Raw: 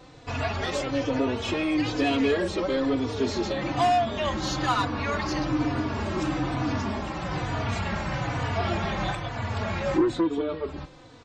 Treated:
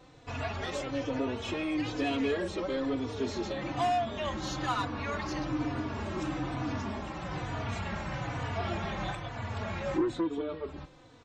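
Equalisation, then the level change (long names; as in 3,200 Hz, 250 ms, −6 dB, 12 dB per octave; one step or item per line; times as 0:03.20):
parametric band 4,700 Hz −4 dB 0.23 octaves
−6.5 dB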